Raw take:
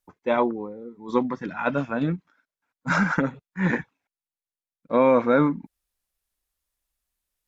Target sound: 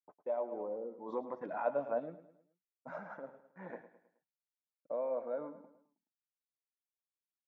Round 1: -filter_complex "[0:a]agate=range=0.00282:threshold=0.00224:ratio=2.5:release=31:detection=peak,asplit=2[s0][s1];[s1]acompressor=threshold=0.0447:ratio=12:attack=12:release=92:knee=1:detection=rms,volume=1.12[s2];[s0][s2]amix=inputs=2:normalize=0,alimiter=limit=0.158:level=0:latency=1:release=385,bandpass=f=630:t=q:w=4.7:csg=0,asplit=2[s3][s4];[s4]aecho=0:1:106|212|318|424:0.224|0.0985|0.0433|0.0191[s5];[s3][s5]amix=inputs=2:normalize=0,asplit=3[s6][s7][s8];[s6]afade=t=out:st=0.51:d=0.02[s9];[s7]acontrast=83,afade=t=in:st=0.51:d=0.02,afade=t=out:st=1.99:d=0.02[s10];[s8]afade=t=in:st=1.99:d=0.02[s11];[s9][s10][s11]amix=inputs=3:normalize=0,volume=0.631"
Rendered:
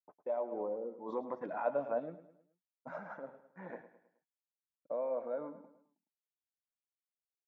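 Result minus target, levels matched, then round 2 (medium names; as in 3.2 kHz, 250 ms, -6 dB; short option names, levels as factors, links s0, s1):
compression: peak gain reduction -9 dB
-filter_complex "[0:a]agate=range=0.00282:threshold=0.00224:ratio=2.5:release=31:detection=peak,asplit=2[s0][s1];[s1]acompressor=threshold=0.0141:ratio=12:attack=12:release=92:knee=1:detection=rms,volume=1.12[s2];[s0][s2]amix=inputs=2:normalize=0,alimiter=limit=0.158:level=0:latency=1:release=385,bandpass=f=630:t=q:w=4.7:csg=0,asplit=2[s3][s4];[s4]aecho=0:1:106|212|318|424:0.224|0.0985|0.0433|0.0191[s5];[s3][s5]amix=inputs=2:normalize=0,asplit=3[s6][s7][s8];[s6]afade=t=out:st=0.51:d=0.02[s9];[s7]acontrast=83,afade=t=in:st=0.51:d=0.02,afade=t=out:st=1.99:d=0.02[s10];[s8]afade=t=in:st=1.99:d=0.02[s11];[s9][s10][s11]amix=inputs=3:normalize=0,volume=0.631"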